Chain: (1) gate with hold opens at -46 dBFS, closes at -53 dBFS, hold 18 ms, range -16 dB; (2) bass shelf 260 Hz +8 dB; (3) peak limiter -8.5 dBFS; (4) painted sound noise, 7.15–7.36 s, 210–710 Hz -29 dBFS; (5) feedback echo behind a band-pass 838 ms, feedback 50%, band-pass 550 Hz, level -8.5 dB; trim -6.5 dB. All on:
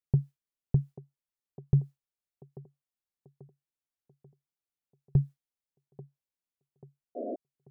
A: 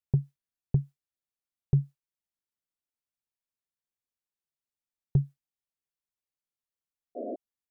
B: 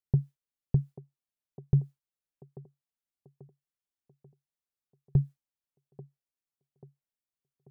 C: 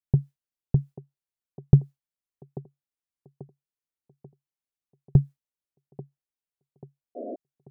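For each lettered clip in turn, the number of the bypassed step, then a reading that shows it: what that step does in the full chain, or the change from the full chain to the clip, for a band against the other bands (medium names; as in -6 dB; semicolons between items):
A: 5, echo-to-direct -12.0 dB to none; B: 4, momentary loudness spread change -2 LU; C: 3, mean gain reduction 2.0 dB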